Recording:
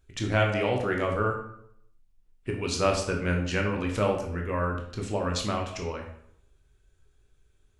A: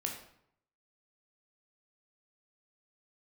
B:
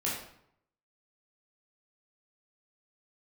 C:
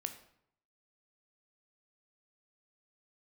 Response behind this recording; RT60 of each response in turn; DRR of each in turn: A; 0.70 s, 0.70 s, 0.70 s; 0.5 dB, -6.5 dB, 7.0 dB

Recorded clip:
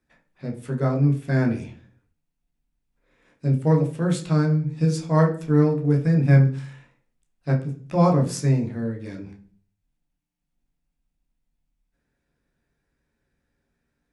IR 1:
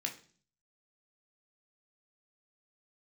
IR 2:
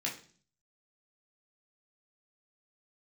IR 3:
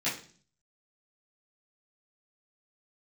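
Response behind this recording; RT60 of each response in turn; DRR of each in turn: 1; 0.45 s, 0.45 s, 0.45 s; 1.0 dB, -4.0 dB, -12.5 dB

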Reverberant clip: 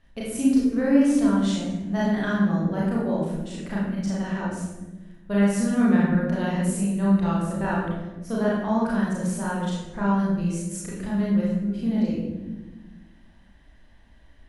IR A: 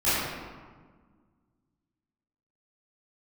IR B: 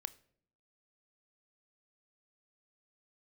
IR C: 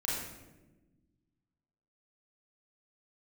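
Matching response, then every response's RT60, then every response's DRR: C; 1.5 s, 0.60 s, 1.1 s; -16.0 dB, 14.5 dB, -6.5 dB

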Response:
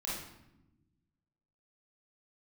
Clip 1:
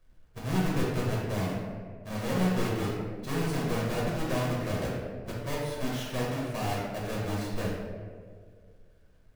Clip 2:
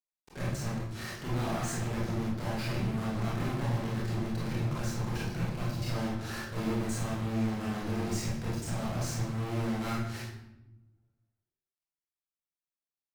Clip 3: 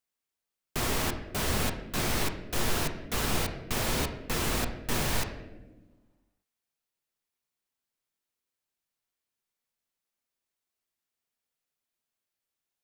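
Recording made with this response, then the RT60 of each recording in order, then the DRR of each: 2; 2.0 s, 0.95 s, 1.3 s; -6.0 dB, -7.0 dB, 5.0 dB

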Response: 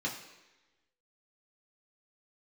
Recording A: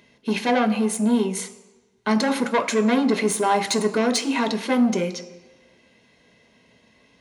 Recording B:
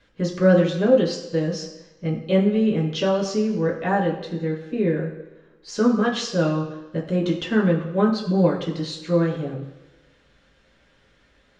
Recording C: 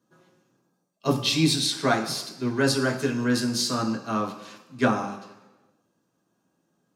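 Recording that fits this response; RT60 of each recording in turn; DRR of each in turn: B; 1.1 s, 1.1 s, 1.1 s; 6.5 dB, -3.5 dB, 0.5 dB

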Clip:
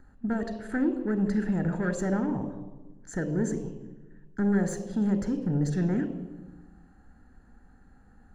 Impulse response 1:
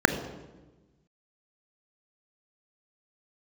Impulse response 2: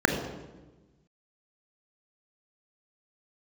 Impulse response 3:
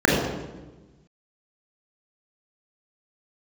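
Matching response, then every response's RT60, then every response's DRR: 1; 1.2 s, 1.2 s, 1.2 s; 9.5 dB, 4.5 dB, -3.5 dB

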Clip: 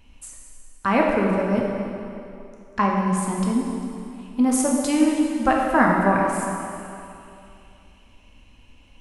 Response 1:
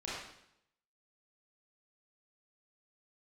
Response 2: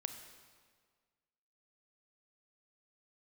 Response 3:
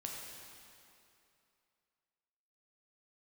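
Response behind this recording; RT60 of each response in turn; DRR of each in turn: 3; 0.75 s, 1.7 s, 2.7 s; -8.5 dB, 7.0 dB, -2.0 dB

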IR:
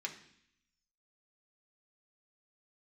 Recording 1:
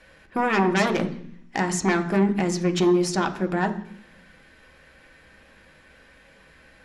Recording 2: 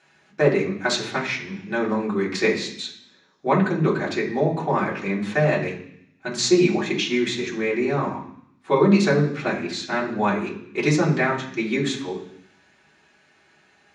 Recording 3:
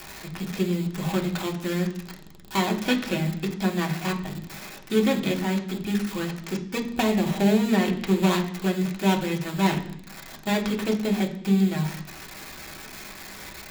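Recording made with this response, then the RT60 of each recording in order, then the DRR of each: 3; 0.65 s, 0.65 s, 0.65 s; 5.0 dB, -5.5 dB, 0.5 dB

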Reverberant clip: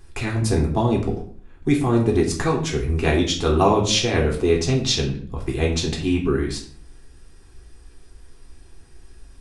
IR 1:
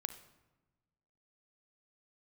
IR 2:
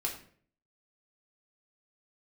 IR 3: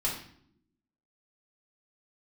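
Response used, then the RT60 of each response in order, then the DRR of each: 2; 1.2 s, 0.50 s, 0.70 s; 9.5 dB, -1.0 dB, -5.0 dB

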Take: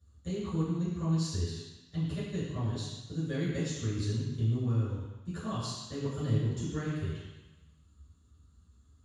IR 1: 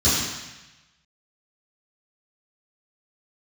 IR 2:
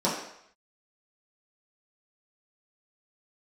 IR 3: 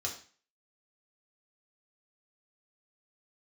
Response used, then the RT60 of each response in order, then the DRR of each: 1; 1.0 s, 0.70 s, 0.40 s; -15.5 dB, -8.5 dB, -1.5 dB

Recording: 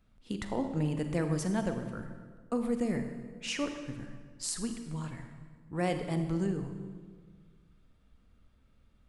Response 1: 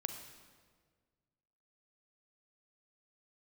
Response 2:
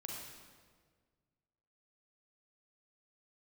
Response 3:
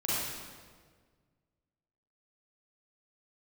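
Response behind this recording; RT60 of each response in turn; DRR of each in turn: 1; 1.7 s, 1.7 s, 1.7 s; 6.5 dB, -2.0 dB, -9.0 dB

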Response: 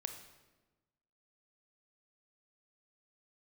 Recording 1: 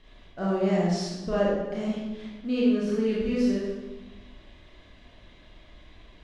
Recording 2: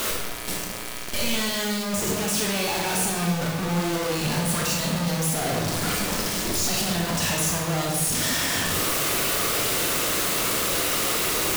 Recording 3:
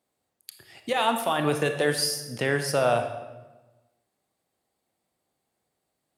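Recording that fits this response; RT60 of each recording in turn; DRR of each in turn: 3; 1.2 s, 1.2 s, 1.2 s; -6.5 dB, -2.0 dB, 6.0 dB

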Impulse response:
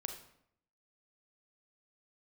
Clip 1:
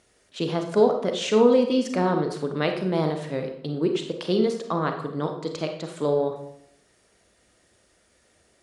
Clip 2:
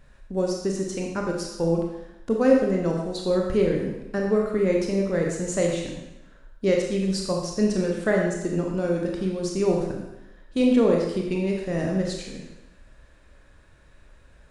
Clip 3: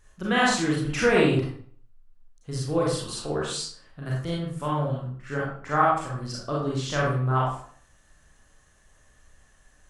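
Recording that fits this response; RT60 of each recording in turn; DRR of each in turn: 1; 0.70 s, 0.95 s, 0.50 s; 4.5 dB, -0.5 dB, -5.5 dB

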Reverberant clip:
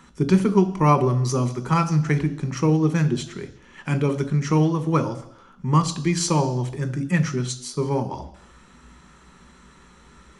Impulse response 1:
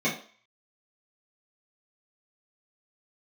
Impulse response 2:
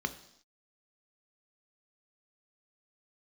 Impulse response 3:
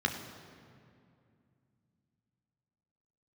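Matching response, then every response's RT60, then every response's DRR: 2; 0.45 s, 0.70 s, 2.4 s; -10.5 dB, 8.5 dB, 3.0 dB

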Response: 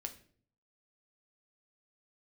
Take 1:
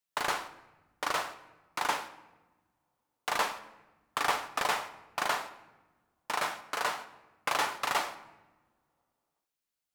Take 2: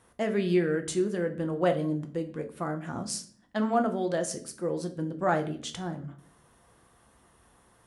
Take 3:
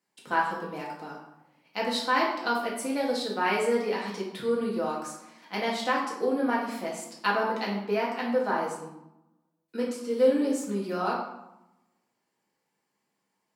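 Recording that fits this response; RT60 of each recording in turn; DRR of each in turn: 2; no single decay rate, 0.50 s, 0.90 s; 9.5 dB, 5.5 dB, -4.5 dB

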